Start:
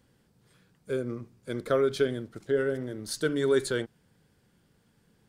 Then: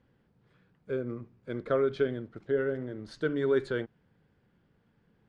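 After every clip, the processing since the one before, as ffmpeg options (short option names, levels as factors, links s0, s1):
-af "lowpass=2500,volume=0.794"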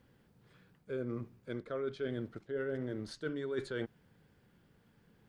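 -af "highshelf=f=4400:g=10,areverse,acompressor=threshold=0.0178:ratio=16,areverse,volume=1.19"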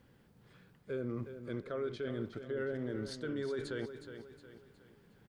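-filter_complex "[0:a]alimiter=level_in=2.51:limit=0.0631:level=0:latency=1:release=22,volume=0.398,asplit=2[s0][s1];[s1]aecho=0:1:364|728|1092|1456:0.316|0.133|0.0558|0.0234[s2];[s0][s2]amix=inputs=2:normalize=0,volume=1.26"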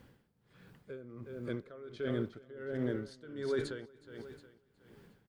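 -af "aeval=exprs='val(0)*pow(10,-18*(0.5-0.5*cos(2*PI*1.4*n/s))/20)':c=same,volume=1.88"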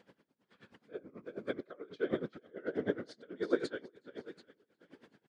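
-af "afftfilt=real='hypot(re,im)*cos(2*PI*random(0))':imag='hypot(re,im)*sin(2*PI*random(1))':win_size=512:overlap=0.75,highpass=230,lowpass=6100,aeval=exprs='val(0)*pow(10,-20*(0.5-0.5*cos(2*PI*9.3*n/s))/20)':c=same,volume=4.22"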